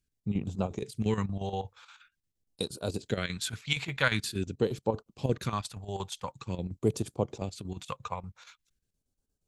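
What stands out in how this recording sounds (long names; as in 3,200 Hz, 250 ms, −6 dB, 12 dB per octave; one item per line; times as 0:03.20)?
phaser sweep stages 2, 0.46 Hz, lowest notch 290–1,900 Hz
chopped level 8.5 Hz, depth 65%, duty 70%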